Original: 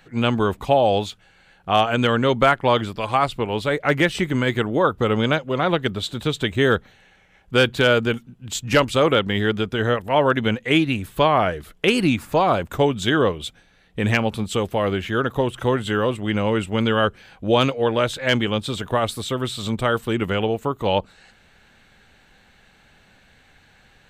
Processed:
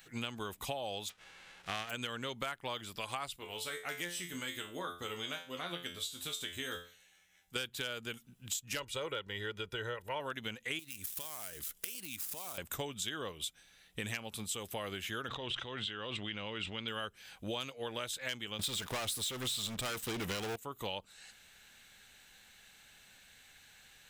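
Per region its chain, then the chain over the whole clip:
1.08–1.89 s: formants flattened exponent 0.3 + low-pass 2.2 kHz + upward compressor, threshold -38 dBFS
3.36–7.56 s: treble shelf 4.1 kHz +6 dB + feedback comb 87 Hz, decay 0.32 s, mix 90%
8.79–10.20 s: treble shelf 4.6 kHz -11 dB + comb 2.1 ms, depth 59%
10.79–12.58 s: dead-time distortion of 0.067 ms + treble shelf 4.6 kHz +10.5 dB + compression, threshold -29 dBFS
15.28–16.88 s: four-pole ladder low-pass 4.5 kHz, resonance 40% + level flattener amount 100%
18.59–20.56 s: waveshaping leveller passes 5 + treble shelf 7 kHz -8.5 dB
whole clip: pre-emphasis filter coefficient 0.9; band-stop 4.4 kHz, Q 20; compression 6:1, threshold -42 dBFS; trim +5.5 dB

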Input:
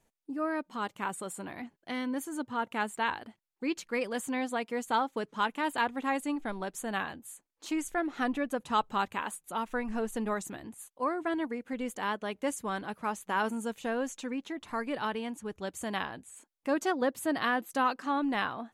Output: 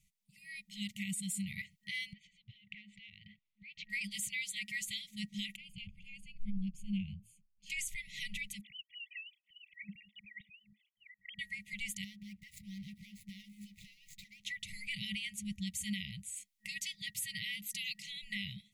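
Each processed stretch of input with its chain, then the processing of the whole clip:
2.13–3.90 s: low-pass 3.4 kHz 24 dB/octave + compression 12:1, threshold -44 dBFS
5.56–7.70 s: boxcar filter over 23 samples + bass shelf 76 Hz +11.5 dB
8.61–11.39 s: formants replaced by sine waves + Shepard-style flanger rising 1.1 Hz
12.04–14.41 s: median filter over 15 samples + dynamic bell 7.5 kHz, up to -7 dB, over -59 dBFS, Q 0.93 + compression 10:1, threshold -41 dBFS
whole clip: FFT band-reject 210–1900 Hz; level rider gain up to 5 dB; peak limiter -30 dBFS; trim +1.5 dB

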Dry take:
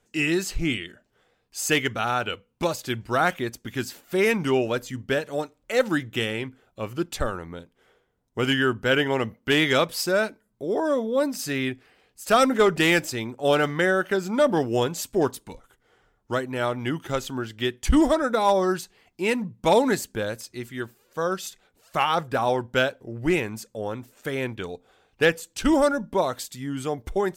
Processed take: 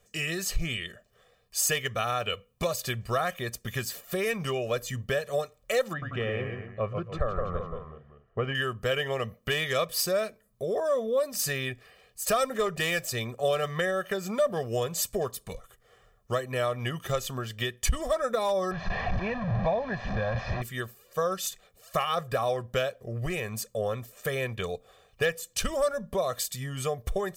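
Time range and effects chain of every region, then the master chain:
5.93–8.55 s: low-pass 1.6 kHz + ever faster or slower copies 90 ms, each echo -1 st, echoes 3, each echo -6 dB
18.71–20.62 s: one-bit delta coder 32 kbps, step -24 dBFS + low-pass 1.5 kHz + comb 1.2 ms
whole clip: compression 4:1, threshold -28 dBFS; treble shelf 10 kHz +8 dB; comb 1.7 ms, depth 86%

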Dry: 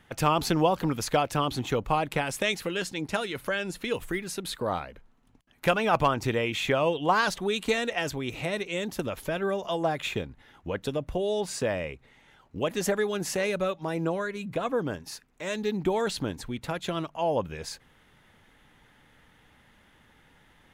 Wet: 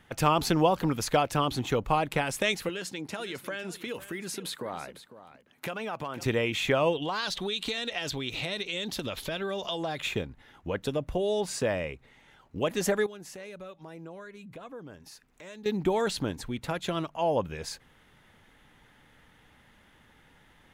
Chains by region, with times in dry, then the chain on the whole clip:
2.69–6.26 s: compression, threshold -31 dBFS + high-pass 140 Hz + delay 502 ms -14.5 dB
7.02–10.00 s: peaking EQ 3.8 kHz +13 dB 0.95 oct + compression 4:1, threshold -29 dBFS
13.06–15.66 s: compression 2:1, threshold -53 dBFS + tape noise reduction on one side only encoder only
whole clip: none

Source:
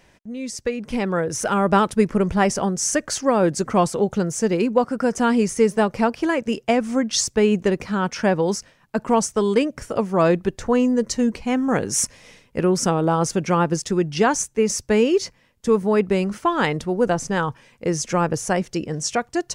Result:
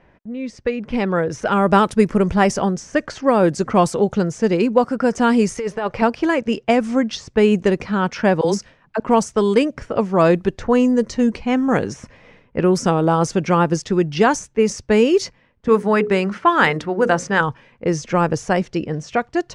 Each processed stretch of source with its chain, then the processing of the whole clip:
5.52–6.02 s: peaking EQ 220 Hz -11.5 dB 1.3 oct + compressor with a negative ratio -24 dBFS
8.41–9.00 s: treble shelf 5.2 kHz +9 dB + phase dispersion lows, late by 40 ms, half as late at 520 Hz
15.68–17.41 s: high-pass 120 Hz 6 dB/octave + peaking EQ 1.6 kHz +6.5 dB 1.3 oct + hum notches 60/120/180/240/300/360/420/480/540 Hz
whole clip: de-esser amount 50%; level-controlled noise filter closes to 1.7 kHz, open at -13 dBFS; trim +3 dB

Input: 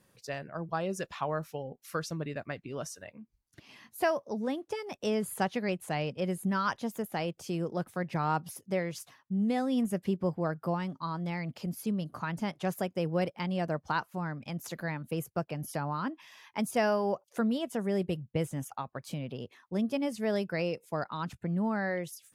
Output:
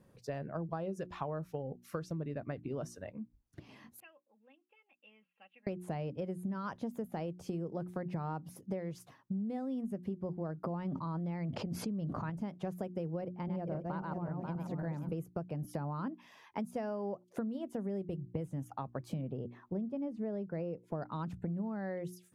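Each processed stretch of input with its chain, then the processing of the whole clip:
4.00–5.67 s: band-pass filter 2.7 kHz, Q 13 + distance through air 430 m + comb 3.7 ms, depth 69%
10.64–12.30 s: distance through air 78 m + level flattener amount 100%
13.21–15.12 s: backward echo that repeats 269 ms, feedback 45%, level -2.5 dB + treble shelf 2.2 kHz -10.5 dB
19.21–21.02 s: low-pass 1.2 kHz 6 dB/octave + upward compressor, threshold -46 dBFS
whole clip: tilt shelf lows +8 dB, about 1.1 kHz; hum notches 60/120/180/240/300/360 Hz; compression 12:1, threshold -33 dBFS; trim -1.5 dB

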